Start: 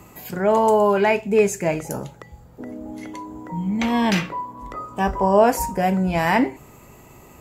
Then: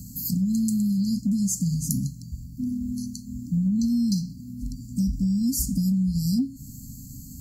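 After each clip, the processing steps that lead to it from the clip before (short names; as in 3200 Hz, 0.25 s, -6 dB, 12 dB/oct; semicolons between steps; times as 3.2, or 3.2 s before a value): FFT band-reject 290–4100 Hz; compressor 12:1, threshold -29 dBFS, peak gain reduction 14 dB; gain +8.5 dB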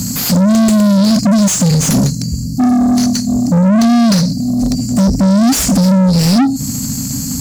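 high shelf 11000 Hz -8.5 dB; overdrive pedal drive 33 dB, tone 4000 Hz, clips at -11.5 dBFS; gain +8.5 dB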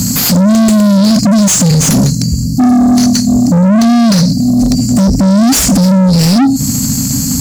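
limiter -10 dBFS, peak gain reduction 5 dB; gain +6 dB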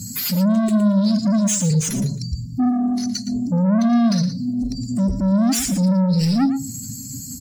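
per-bin expansion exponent 2; echo 0.115 s -11 dB; on a send at -21 dB: reverb RT60 0.55 s, pre-delay 5 ms; on the sum: gain -8 dB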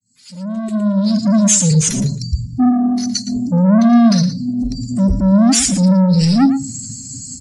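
opening faded in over 1.40 s; downsampling 22050 Hz; three-band expander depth 40%; gain +5.5 dB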